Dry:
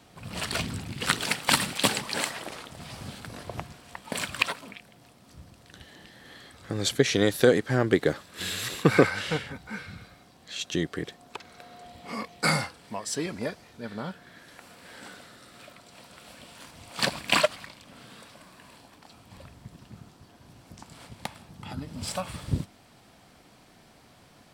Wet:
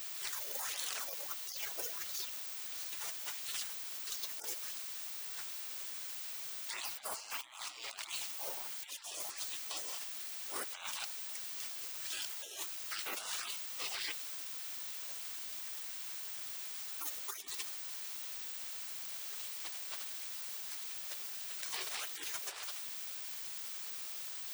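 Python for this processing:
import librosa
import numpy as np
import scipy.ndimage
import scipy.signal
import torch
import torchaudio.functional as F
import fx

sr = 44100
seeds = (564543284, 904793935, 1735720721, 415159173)

p1 = fx.low_shelf(x, sr, hz=440.0, db=-5.5)
p2 = p1 + fx.echo_feedback(p1, sr, ms=79, feedback_pct=54, wet_db=-15.5, dry=0)
p3 = fx.filter_lfo_notch(p2, sr, shape='sine', hz=1.5, low_hz=470.0, high_hz=5100.0, q=0.84)
p4 = fx.spec_gate(p3, sr, threshold_db=-30, keep='weak')
p5 = scipy.signal.sosfilt(scipy.signal.butter(4, 290.0, 'highpass', fs=sr, output='sos'), p4)
p6 = fx.leveller(p5, sr, passes=1)
p7 = fx.dmg_noise_colour(p6, sr, seeds[0], colour='blue', level_db=-62.0)
p8 = fx.peak_eq(p7, sr, hz=13000.0, db=-12.5, octaves=0.95)
p9 = fx.over_compress(p8, sr, threshold_db=-60.0, ratio=-1.0)
y = F.gain(torch.from_numpy(p9), 18.0).numpy()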